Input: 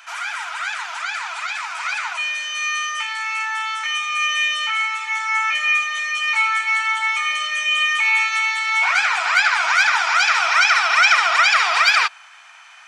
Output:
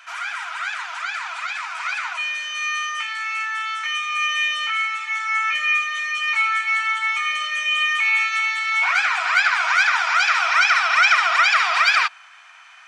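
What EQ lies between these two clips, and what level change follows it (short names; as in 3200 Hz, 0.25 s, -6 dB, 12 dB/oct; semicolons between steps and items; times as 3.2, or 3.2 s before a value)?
HPF 660 Hz 12 dB/oct; high shelf 4600 Hz -7.5 dB; notch 870 Hz, Q 13; 0.0 dB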